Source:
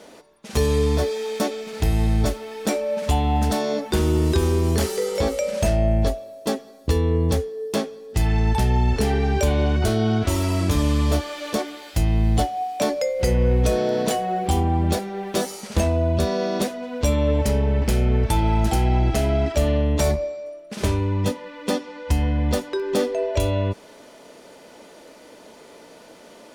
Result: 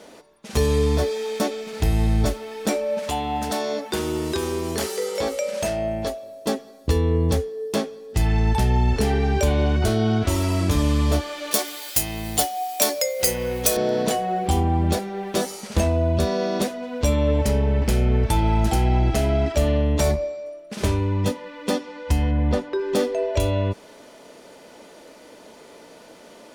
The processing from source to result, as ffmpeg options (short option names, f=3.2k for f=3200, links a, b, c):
-filter_complex "[0:a]asettb=1/sr,asplit=3[a][b][c];[a]atrim=end=2.994[d];[b]atrim=start=2.99:end=6.23,asetpts=PTS-STARTPTS,afade=t=in:d=0.004:c=qsin,afade=t=out:st=3.236:d=0.004:c=qsin,highpass=f=380:p=1[e];[c]atrim=start=6.226[f];[d][e]acrossfade=d=0.004:c1=hsin:c2=qsin[g];[g][f]acrossfade=d=0.004:c1=qsin:c2=hsin,asettb=1/sr,asplit=3[h][i][j];[h]atrim=end=11.514[k];[i]atrim=start=11.51:end=13.77,asetpts=PTS-STARTPTS,afade=t=in:d=0.004:c=qsin,afade=t=out:st=2.256:d=0.004:c=qsin,aemphasis=mode=production:type=riaa[l];[j]atrim=start=13.766[m];[k][l]acrossfade=d=0.004:c1=hsin:c2=qsin[n];[n][m]acrossfade=d=0.004:c1=qsin:c2=hsin,asettb=1/sr,asplit=3[o][p][q];[o]atrim=end=22.314[r];[p]atrim=start=22.31:end=22.81,asetpts=PTS-STARTPTS,afade=t=in:d=0.004:c=qsin,afade=t=out:st=0.496:d=0.004:c=qsin,aemphasis=mode=reproduction:type=75fm[s];[q]atrim=start=22.806[t];[r][s]acrossfade=d=0.004:c1=hsin:c2=qsin[u];[u][t]acrossfade=d=0.004:c1=qsin:c2=hsin"